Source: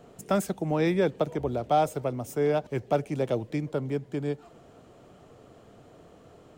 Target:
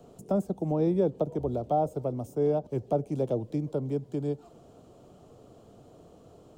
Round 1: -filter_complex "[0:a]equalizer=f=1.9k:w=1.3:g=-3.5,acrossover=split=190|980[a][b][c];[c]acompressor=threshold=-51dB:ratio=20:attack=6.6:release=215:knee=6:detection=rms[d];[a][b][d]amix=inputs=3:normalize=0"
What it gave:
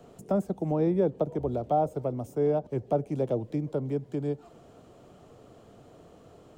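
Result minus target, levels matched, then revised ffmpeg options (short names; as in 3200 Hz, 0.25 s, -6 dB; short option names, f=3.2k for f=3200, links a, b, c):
2000 Hz band +4.0 dB
-filter_complex "[0:a]equalizer=f=1.9k:w=1.3:g=-12.5,acrossover=split=190|980[a][b][c];[c]acompressor=threshold=-51dB:ratio=20:attack=6.6:release=215:knee=6:detection=rms[d];[a][b][d]amix=inputs=3:normalize=0"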